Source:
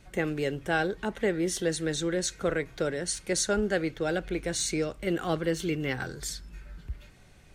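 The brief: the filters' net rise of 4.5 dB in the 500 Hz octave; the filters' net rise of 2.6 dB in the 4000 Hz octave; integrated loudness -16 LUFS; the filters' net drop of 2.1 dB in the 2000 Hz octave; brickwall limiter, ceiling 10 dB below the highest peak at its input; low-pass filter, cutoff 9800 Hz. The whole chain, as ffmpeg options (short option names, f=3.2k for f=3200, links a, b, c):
-af "lowpass=9.8k,equalizer=f=500:t=o:g=5.5,equalizer=f=2k:t=o:g=-4,equalizer=f=4k:t=o:g=4,volume=16dB,alimiter=limit=-6.5dB:level=0:latency=1"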